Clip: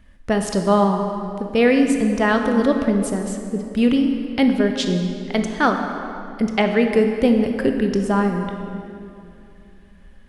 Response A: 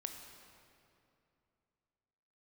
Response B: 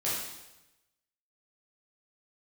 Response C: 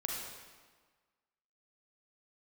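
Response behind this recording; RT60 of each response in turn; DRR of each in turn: A; 2.7, 0.95, 1.5 s; 4.5, -9.0, -1.5 dB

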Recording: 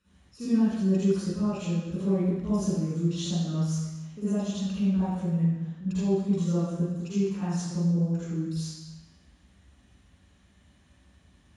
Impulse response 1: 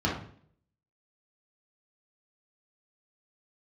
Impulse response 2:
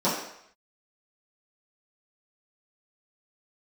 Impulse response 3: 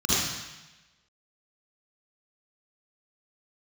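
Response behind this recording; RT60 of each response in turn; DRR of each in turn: 3; 0.55, 0.70, 1.0 s; -4.0, -12.0, -10.0 dB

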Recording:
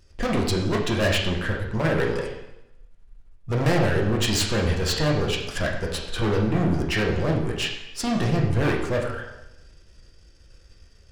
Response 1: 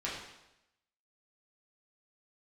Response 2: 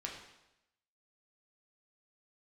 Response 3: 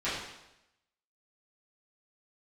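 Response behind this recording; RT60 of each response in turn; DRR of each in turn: 2; 0.90, 0.90, 0.90 s; -7.0, -1.5, -13.5 dB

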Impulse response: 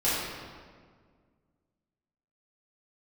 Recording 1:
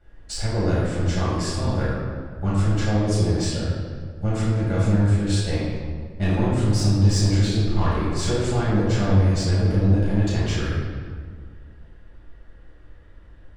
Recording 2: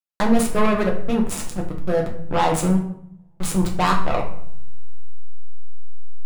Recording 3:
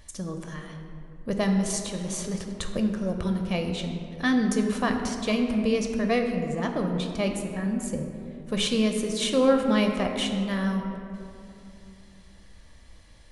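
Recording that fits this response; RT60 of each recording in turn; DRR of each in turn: 1; 1.8, 0.65, 2.8 s; -10.5, -1.0, 3.5 dB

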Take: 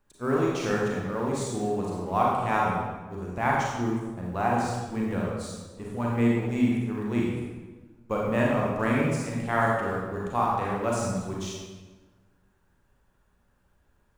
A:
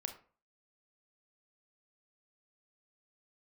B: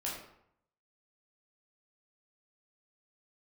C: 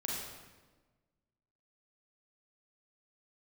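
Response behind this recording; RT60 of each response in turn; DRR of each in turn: C; 0.40, 0.70, 1.3 s; 5.5, -5.5, -4.0 dB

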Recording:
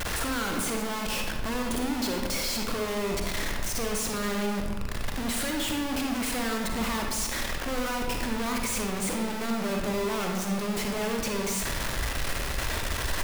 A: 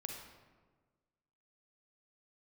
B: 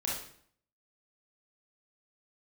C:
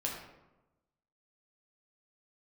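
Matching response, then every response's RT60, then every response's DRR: A; 1.4, 0.60, 1.0 s; 1.5, -5.0, -2.5 dB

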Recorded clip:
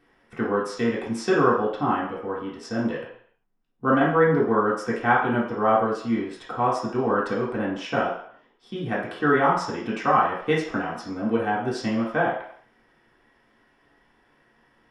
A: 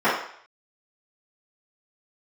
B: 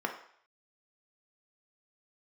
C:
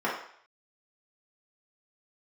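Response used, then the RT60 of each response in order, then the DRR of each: C; 0.60, 0.60, 0.60 s; -16.5, 2.5, -7.0 dB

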